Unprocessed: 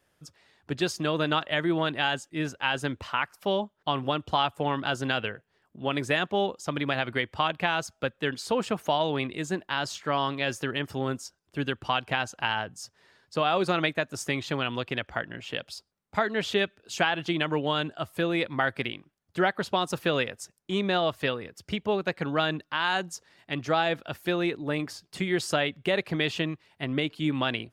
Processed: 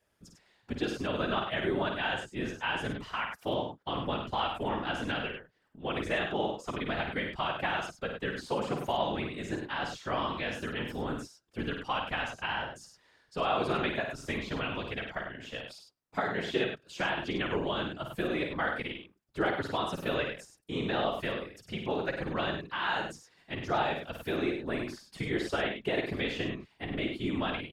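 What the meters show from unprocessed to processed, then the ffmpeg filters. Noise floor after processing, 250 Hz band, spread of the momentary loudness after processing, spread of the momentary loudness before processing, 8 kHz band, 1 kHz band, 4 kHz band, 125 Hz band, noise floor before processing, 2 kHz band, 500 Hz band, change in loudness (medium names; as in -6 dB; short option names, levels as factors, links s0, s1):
-69 dBFS, -4.5 dB, 8 LU, 9 LU, -10.5 dB, -4.5 dB, -6.0 dB, -5.5 dB, -73 dBFS, -4.5 dB, -4.5 dB, -4.5 dB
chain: -filter_complex "[0:a]acrossover=split=3800[s0][s1];[s1]acompressor=threshold=0.00631:ratio=4:attack=1:release=60[s2];[s0][s2]amix=inputs=2:normalize=0,afftfilt=real='hypot(re,im)*cos(2*PI*random(0))':imag='hypot(re,im)*sin(2*PI*random(1))':win_size=512:overlap=0.75,aecho=1:1:52.48|99.13:0.501|0.447"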